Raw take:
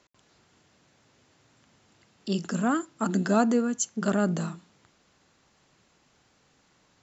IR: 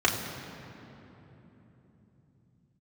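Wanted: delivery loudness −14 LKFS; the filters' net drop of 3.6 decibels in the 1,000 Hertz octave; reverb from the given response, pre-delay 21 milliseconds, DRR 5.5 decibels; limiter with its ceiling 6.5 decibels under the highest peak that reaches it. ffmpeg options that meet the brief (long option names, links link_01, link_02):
-filter_complex "[0:a]equalizer=frequency=1000:width_type=o:gain=-5.5,alimiter=limit=-18.5dB:level=0:latency=1,asplit=2[link_01][link_02];[1:a]atrim=start_sample=2205,adelay=21[link_03];[link_02][link_03]afir=irnorm=-1:irlink=0,volume=-20dB[link_04];[link_01][link_04]amix=inputs=2:normalize=0,volume=15dB"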